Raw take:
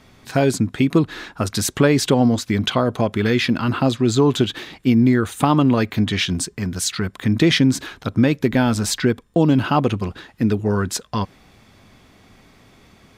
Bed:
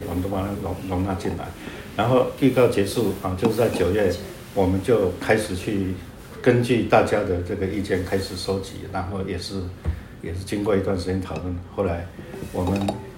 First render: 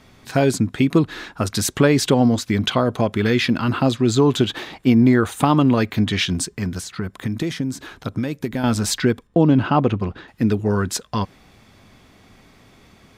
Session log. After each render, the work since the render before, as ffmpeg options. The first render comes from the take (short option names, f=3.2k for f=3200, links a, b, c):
-filter_complex "[0:a]asettb=1/sr,asplit=3[a][b][c];[a]atrim=end=4.464[d];[b]atrim=start=4.46:end=5.41,asetpts=PTS-STARTPTS,afade=t=in:d=0.004:c=qsin,afade=t=out:st=0.946:d=0.004:c=qsin,equalizer=f=780:w=0.93:g=7[e];[c]atrim=start=5.406[f];[d][e]acrossfade=d=0.004:c1=hsin:c2=qsin[g];[g][f]acrossfade=d=0.004:c1=qsin:c2=hsin,asettb=1/sr,asplit=3[h][i][j];[h]atrim=end=6.684[k];[i]atrim=start=6.68:end=8.64,asetpts=PTS-STARTPTS,afade=t=in:d=0.004:c=qsin,afade=t=out:st=1.956:d=0.004:c=qsin,acrossover=split=1500|6200[l][m][n];[l]acompressor=threshold=-22dB:ratio=4[o];[m]acompressor=threshold=-40dB:ratio=4[p];[n]acompressor=threshold=-39dB:ratio=4[q];[o][p][q]amix=inputs=3:normalize=0[r];[j]atrim=start=8.636[s];[k][r]acrossfade=d=0.004:c1=hsin:c2=qsin[t];[t][s]acrossfade=d=0.004:c1=qsin:c2=hsin,asettb=1/sr,asplit=3[u][v][w];[u]atrim=end=9.274[x];[v]atrim=start=9.27:end=10.28,asetpts=PTS-STARTPTS,afade=t=in:d=0.004:c=qsin,afade=t=out:st=1.006:d=0.004:c=qsin,aemphasis=mode=reproduction:type=75fm[y];[w]atrim=start=10.276[z];[x][y]acrossfade=d=0.004:c1=hsin:c2=qsin[aa];[aa][z]acrossfade=d=0.004:c1=qsin:c2=hsin"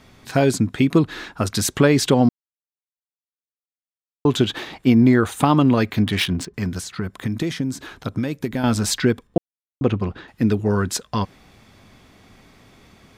-filter_complex "[0:a]asettb=1/sr,asplit=3[a][b][c];[a]atrim=end=6.024[d];[b]atrim=start=6.02:end=6.54,asetpts=PTS-STARTPTS,afade=t=in:d=0.004:c=qsin,afade=t=out:st=0.516:d=0.004:c=qsin,adynamicsmooth=sensitivity=2.5:basefreq=1.6k[e];[c]atrim=start=6.536[f];[d][e]acrossfade=d=0.004:c1=hsin:c2=qsin[g];[g][f]acrossfade=d=0.004:c1=qsin:c2=hsin,asplit=5[h][i][j][k][l];[h]atrim=end=2.29,asetpts=PTS-STARTPTS,afade=t=out:st=2.286:d=0.004:c=hsin[m];[i]atrim=start=2.29:end=4.25,asetpts=PTS-STARTPTS,volume=0[n];[j]atrim=start=4.25:end=9.38,asetpts=PTS-STARTPTS,afade=t=in:d=0.004:c=hsin,afade=t=out:st=5.126:d=0.004:c=hsin[o];[k]atrim=start=9.38:end=9.81,asetpts=PTS-STARTPTS,volume=0[p];[l]atrim=start=9.81,asetpts=PTS-STARTPTS,afade=t=in:d=0.004:c=hsin[q];[m][n][o][p][q]concat=n=5:v=0:a=1"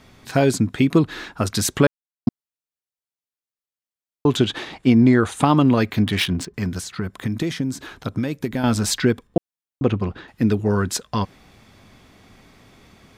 -filter_complex "[0:a]asettb=1/sr,asplit=3[a][b][c];[a]atrim=end=4.374[d];[b]atrim=start=4.37:end=5.48,asetpts=PTS-STARTPTS,afade=t=in:d=0.004:c=qsin,afade=t=out:st=1.106:d=0.004:c=qsin,lowpass=f=11k:w=0.5412,lowpass=f=11k:w=1.3066[e];[c]atrim=start=5.476[f];[d][e]acrossfade=d=0.004:c1=hsin:c2=qsin[g];[g][f]acrossfade=d=0.004:c1=qsin:c2=hsin,asplit=3[h][i][j];[h]atrim=end=1.87,asetpts=PTS-STARTPTS,afade=t=out:st=1.866:d=0.004:c=hsin[k];[i]atrim=start=1.87:end=2.27,asetpts=PTS-STARTPTS,volume=0[l];[j]atrim=start=2.27,asetpts=PTS-STARTPTS,afade=t=in:d=0.004:c=hsin[m];[k][l][m]concat=n=3:v=0:a=1"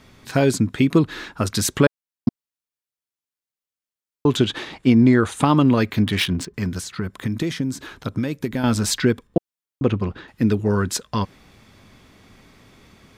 -af "equalizer=f=730:t=o:w=0.29:g=-4"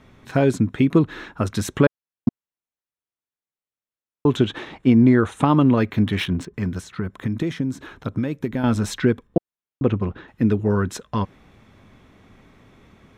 -af "highshelf=f=3.4k:g=-11.5,bandreject=f=4.7k:w=7"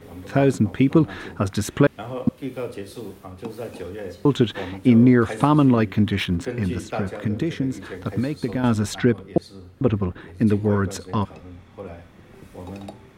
-filter_complex "[1:a]volume=-13dB[a];[0:a][a]amix=inputs=2:normalize=0"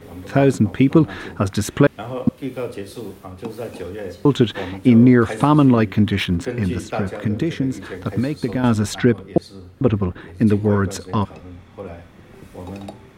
-af "volume=3dB,alimiter=limit=-2dB:level=0:latency=1"